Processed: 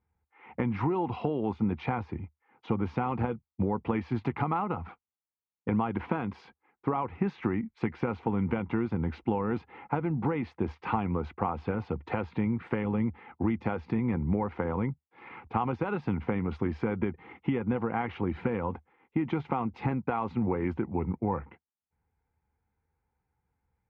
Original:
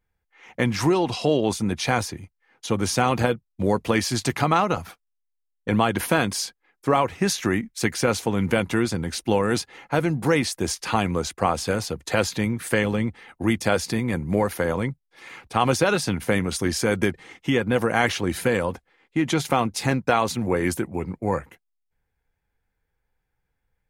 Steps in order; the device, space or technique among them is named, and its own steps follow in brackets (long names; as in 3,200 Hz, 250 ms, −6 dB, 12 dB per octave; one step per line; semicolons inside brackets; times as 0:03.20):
bass amplifier (downward compressor, threshold −25 dBFS, peak gain reduction 11 dB; loudspeaker in its box 62–2,100 Hz, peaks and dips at 76 Hz +7 dB, 220 Hz +3 dB, 600 Hz −9 dB, 860 Hz +5 dB, 1,700 Hz −10 dB)